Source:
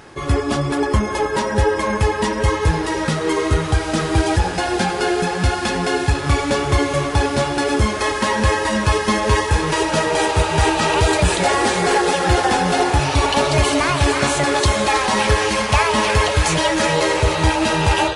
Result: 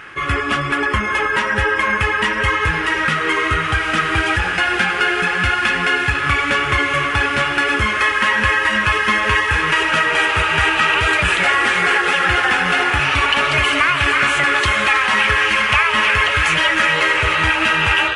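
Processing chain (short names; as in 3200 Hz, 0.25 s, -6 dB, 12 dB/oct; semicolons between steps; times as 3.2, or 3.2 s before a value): band shelf 1900 Hz +15.5 dB; compressor 2.5:1, threshold -9 dBFS, peak gain reduction 6 dB; gain -4 dB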